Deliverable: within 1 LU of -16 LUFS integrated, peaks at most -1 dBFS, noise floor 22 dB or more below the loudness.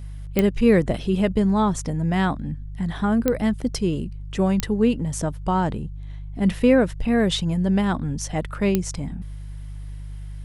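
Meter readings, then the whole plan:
clicks 4; hum 50 Hz; harmonics up to 150 Hz; hum level -31 dBFS; loudness -22.5 LUFS; peak -3.0 dBFS; loudness target -16.0 LUFS
-> de-click; de-hum 50 Hz, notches 3; gain +6.5 dB; limiter -1 dBFS

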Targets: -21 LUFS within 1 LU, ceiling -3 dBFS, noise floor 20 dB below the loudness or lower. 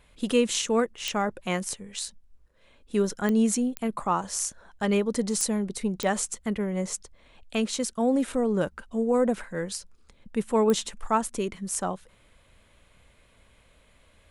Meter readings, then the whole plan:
clicks 6; loudness -27.5 LUFS; peak -7.5 dBFS; loudness target -21.0 LUFS
-> de-click; gain +6.5 dB; limiter -3 dBFS

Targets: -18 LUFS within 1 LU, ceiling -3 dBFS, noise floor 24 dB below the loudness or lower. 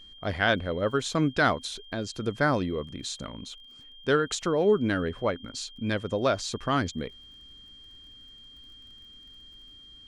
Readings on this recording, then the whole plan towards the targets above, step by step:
ticks 24/s; steady tone 3200 Hz; tone level -48 dBFS; loudness -28.0 LUFS; peak -10.0 dBFS; loudness target -18.0 LUFS
-> de-click; notch 3200 Hz, Q 30; gain +10 dB; limiter -3 dBFS

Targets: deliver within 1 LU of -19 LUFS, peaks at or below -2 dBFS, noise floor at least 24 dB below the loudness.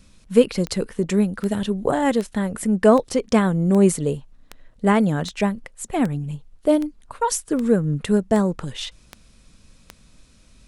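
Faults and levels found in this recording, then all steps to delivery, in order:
clicks 14; loudness -21.0 LUFS; peak -2.0 dBFS; loudness target -19.0 LUFS
-> de-click; gain +2 dB; limiter -2 dBFS

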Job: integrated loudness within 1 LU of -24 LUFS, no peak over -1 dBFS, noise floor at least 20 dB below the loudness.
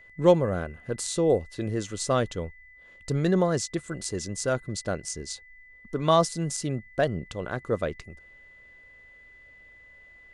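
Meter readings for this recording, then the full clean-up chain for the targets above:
steady tone 2000 Hz; tone level -50 dBFS; loudness -27.5 LUFS; peak -7.0 dBFS; loudness target -24.0 LUFS
-> notch 2000 Hz, Q 30; gain +3.5 dB

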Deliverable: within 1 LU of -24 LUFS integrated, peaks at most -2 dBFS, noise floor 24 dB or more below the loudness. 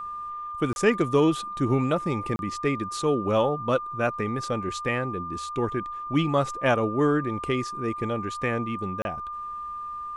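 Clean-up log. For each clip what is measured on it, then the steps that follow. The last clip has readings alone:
dropouts 3; longest dropout 31 ms; steady tone 1200 Hz; tone level -32 dBFS; loudness -26.5 LUFS; peak -8.5 dBFS; loudness target -24.0 LUFS
-> interpolate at 0.73/2.36/9.02, 31 ms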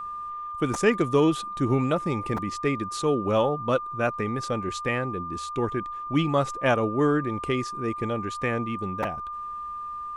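dropouts 0; steady tone 1200 Hz; tone level -32 dBFS
-> notch 1200 Hz, Q 30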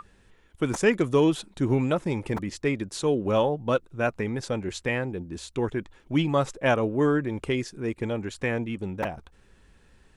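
steady tone none; loudness -27.0 LUFS; peak -9.0 dBFS; loudness target -24.0 LUFS
-> gain +3 dB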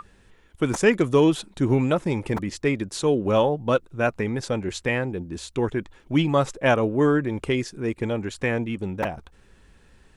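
loudness -24.0 LUFS; peak -6.0 dBFS; noise floor -56 dBFS

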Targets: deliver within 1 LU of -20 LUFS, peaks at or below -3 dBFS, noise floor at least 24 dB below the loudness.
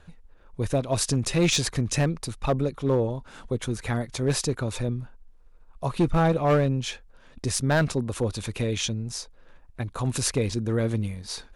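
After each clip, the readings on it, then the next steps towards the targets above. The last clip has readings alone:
clipped 0.9%; flat tops at -15.5 dBFS; loudness -26.5 LUFS; peak -15.5 dBFS; loudness target -20.0 LUFS
-> clip repair -15.5 dBFS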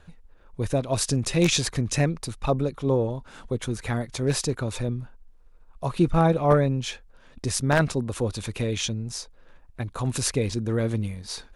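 clipped 0.0%; loudness -26.0 LUFS; peak -6.5 dBFS; loudness target -20.0 LUFS
-> gain +6 dB; limiter -3 dBFS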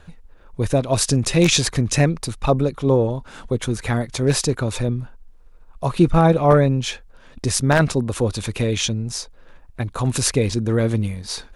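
loudness -20.0 LUFS; peak -3.0 dBFS; noise floor -46 dBFS

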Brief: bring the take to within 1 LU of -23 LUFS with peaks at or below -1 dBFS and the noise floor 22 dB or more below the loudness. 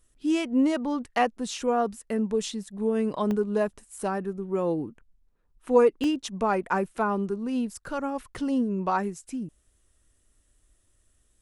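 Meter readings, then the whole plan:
dropouts 2; longest dropout 1.1 ms; loudness -27.5 LUFS; peak -7.5 dBFS; loudness target -23.0 LUFS
-> interpolate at 3.31/6.04, 1.1 ms; gain +4.5 dB

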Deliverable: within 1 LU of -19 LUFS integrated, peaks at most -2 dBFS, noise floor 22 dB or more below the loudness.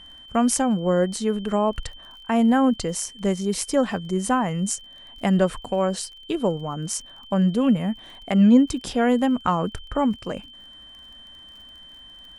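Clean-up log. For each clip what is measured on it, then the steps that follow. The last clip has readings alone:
ticks 35/s; steady tone 3100 Hz; tone level -43 dBFS; loudness -22.5 LUFS; peak -6.0 dBFS; loudness target -19.0 LUFS
-> de-click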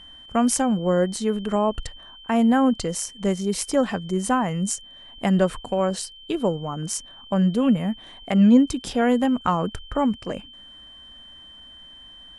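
ticks 0/s; steady tone 3100 Hz; tone level -43 dBFS
-> notch 3100 Hz, Q 30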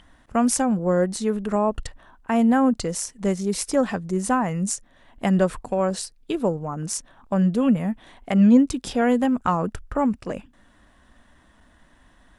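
steady tone none; loudness -22.5 LUFS; peak -6.0 dBFS; loudness target -19.0 LUFS
-> gain +3.5 dB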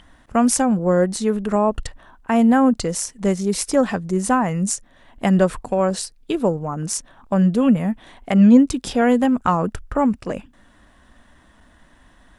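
loudness -19.0 LUFS; peak -2.5 dBFS; noise floor -54 dBFS

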